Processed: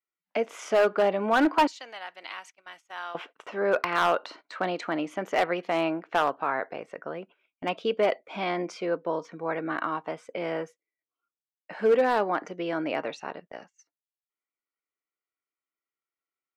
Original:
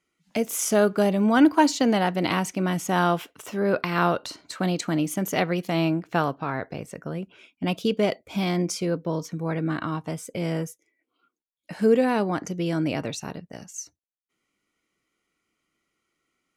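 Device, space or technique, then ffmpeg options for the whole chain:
walkie-talkie: -filter_complex "[0:a]asettb=1/sr,asplit=3[a][b][c];[a]atrim=end=1.674[d];[b]atrim=start=1.67:end=3.15,asetpts=PTS-STARTPTS,afade=t=in:d=0.004:c=qsin,afade=t=out:st=1.476:d=0.004:c=qsin,aderivative[e];[c]atrim=start=3.146[f];[d][e]acrossfade=d=0.004:c1=hsin:c2=qsin[g];[g][f]acrossfade=d=0.004:c1=qsin:c2=hsin,highpass=510,lowpass=2.2k,asoftclip=type=hard:threshold=-19dB,agate=range=-20dB:threshold=-51dB:ratio=16:detection=peak,volume=3.5dB"

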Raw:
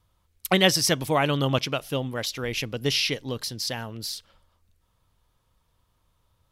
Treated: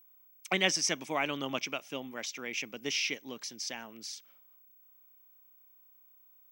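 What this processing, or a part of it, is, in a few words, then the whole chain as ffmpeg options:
old television with a line whistle: -af "highpass=f=200:w=0.5412,highpass=f=200:w=1.3066,equalizer=f=490:t=q:w=4:g=-5,equalizer=f=2.3k:t=q:w=4:g=9,equalizer=f=4.2k:t=q:w=4:g=-7,equalizer=f=6.1k:t=q:w=4:g=8,lowpass=f=8.3k:w=0.5412,lowpass=f=8.3k:w=1.3066,aeval=exprs='val(0)+0.00355*sin(2*PI*15734*n/s)':c=same,volume=-9dB"

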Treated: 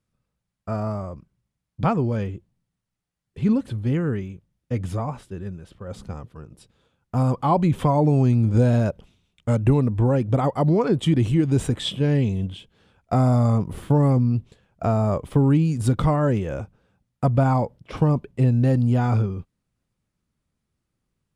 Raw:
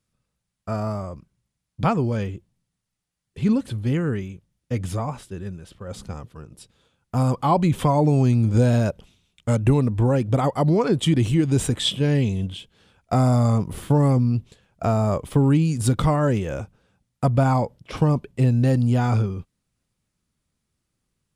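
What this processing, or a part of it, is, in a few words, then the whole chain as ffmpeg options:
behind a face mask: -af "highshelf=f=2.8k:g=-8"

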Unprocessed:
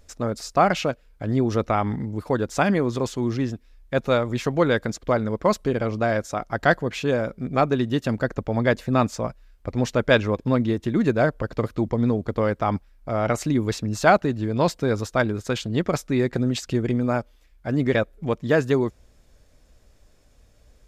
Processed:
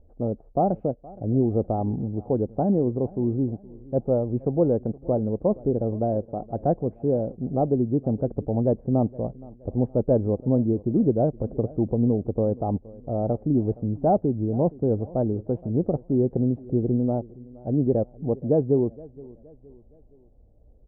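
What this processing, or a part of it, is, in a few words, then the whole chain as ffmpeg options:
under water: -af "deesser=0.6,lowpass=f=550:w=0.5412,lowpass=f=550:w=1.3066,equalizer=f=790:t=o:w=0.41:g=9,aecho=1:1:469|938|1407:0.0841|0.0353|0.0148"

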